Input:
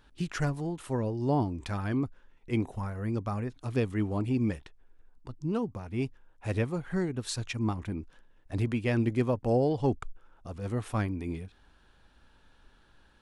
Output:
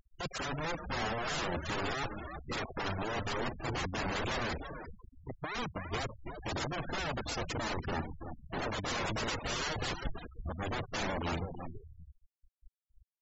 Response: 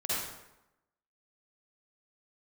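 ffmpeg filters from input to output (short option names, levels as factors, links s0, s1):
-filter_complex "[0:a]aresample=16000,aeval=exprs='(mod(35.5*val(0)+1,2)-1)/35.5':c=same,aresample=44100,acompressor=mode=upward:threshold=0.00501:ratio=2.5,asplit=2[s0][s1];[s1]lowshelf=f=200:g=7[s2];[1:a]atrim=start_sample=2205,atrim=end_sample=4410[s3];[s2][s3]afir=irnorm=-1:irlink=0,volume=0.1[s4];[s0][s4]amix=inputs=2:normalize=0,acontrast=27,aeval=exprs='sgn(val(0))*max(abs(val(0))-0.00355,0)':c=same,asplit=6[s5][s6][s7][s8][s9][s10];[s6]adelay=330,afreqshift=-79,volume=0.501[s11];[s7]adelay=660,afreqshift=-158,volume=0.2[s12];[s8]adelay=990,afreqshift=-237,volume=0.0804[s13];[s9]adelay=1320,afreqshift=-316,volume=0.032[s14];[s10]adelay=1650,afreqshift=-395,volume=0.0129[s15];[s5][s11][s12][s13][s14][s15]amix=inputs=6:normalize=0,afftfilt=real='re*gte(hypot(re,im),0.0316)':imag='im*gte(hypot(re,im),0.0316)':win_size=1024:overlap=0.75,volume=0.631"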